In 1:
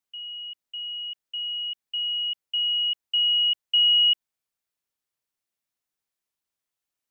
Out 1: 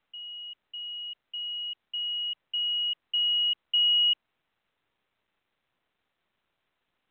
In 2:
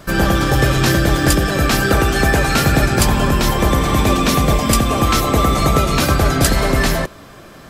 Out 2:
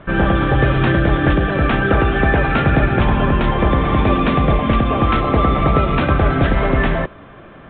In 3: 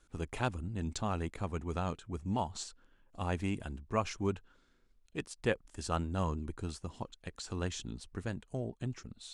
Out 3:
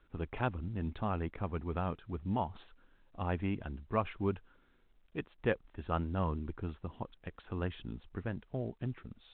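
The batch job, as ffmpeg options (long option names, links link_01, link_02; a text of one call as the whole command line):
ffmpeg -i in.wav -af "lowpass=2600" -ar 8000 -c:a pcm_mulaw out.wav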